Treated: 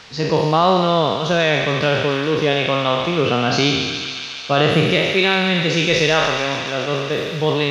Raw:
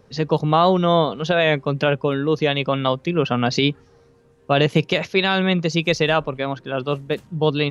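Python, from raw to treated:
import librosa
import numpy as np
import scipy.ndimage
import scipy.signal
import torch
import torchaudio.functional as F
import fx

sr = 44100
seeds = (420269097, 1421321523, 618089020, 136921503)

y = fx.spec_trails(x, sr, decay_s=1.3)
y = fx.dmg_noise_band(y, sr, seeds[0], low_hz=690.0, high_hz=5200.0, level_db=-42.0)
y = fx.echo_wet_highpass(y, sr, ms=142, feedback_pct=82, hz=2000.0, wet_db=-6.5)
y = F.gain(torch.from_numpy(y), -1.0).numpy()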